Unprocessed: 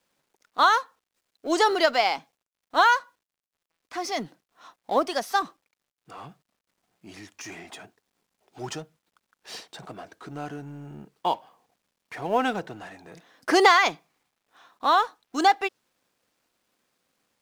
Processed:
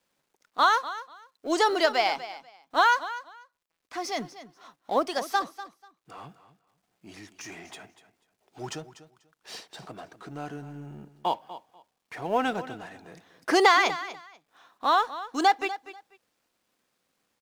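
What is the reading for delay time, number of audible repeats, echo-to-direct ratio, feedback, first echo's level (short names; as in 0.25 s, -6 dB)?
0.244 s, 2, -14.5 dB, 19%, -14.5 dB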